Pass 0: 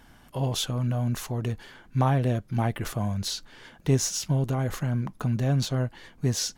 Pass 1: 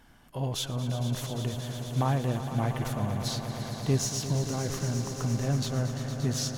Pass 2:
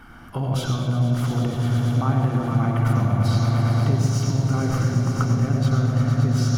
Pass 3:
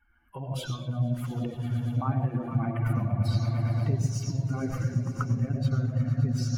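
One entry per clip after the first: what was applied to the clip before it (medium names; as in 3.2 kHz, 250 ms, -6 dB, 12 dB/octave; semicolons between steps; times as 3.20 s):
echo with a slow build-up 115 ms, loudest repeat 5, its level -12 dB; trim -4 dB
compression, threshold -35 dBFS, peak gain reduction 14 dB; reverberation RT60 1.1 s, pre-delay 86 ms, DRR 5.5 dB; trim +5.5 dB
expander on every frequency bin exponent 2; trim -3 dB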